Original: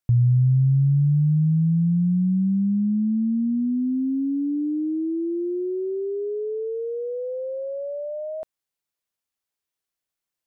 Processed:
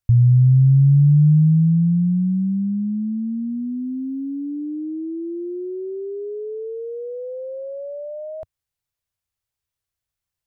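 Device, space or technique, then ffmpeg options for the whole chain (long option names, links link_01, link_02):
car stereo with a boomy subwoofer: -af "lowshelf=frequency=150:width_type=q:width=1.5:gain=13.5,alimiter=limit=-9dB:level=0:latency=1"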